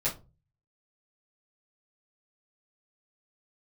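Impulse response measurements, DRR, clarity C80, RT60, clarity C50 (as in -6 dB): -10.5 dB, 20.5 dB, 0.30 s, 12.0 dB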